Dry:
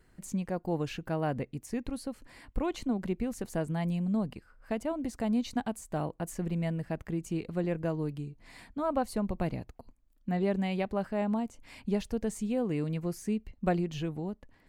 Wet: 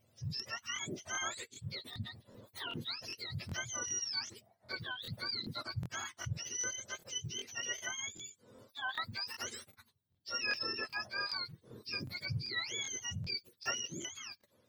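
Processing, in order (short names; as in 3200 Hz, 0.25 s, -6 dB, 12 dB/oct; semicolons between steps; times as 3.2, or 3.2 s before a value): spectrum mirrored in octaves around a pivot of 1000 Hz; 8.45–9.25 low shelf 320 Hz -10 dB; crackling interface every 0.39 s, samples 1024, repeat, from 0.35; gain -4 dB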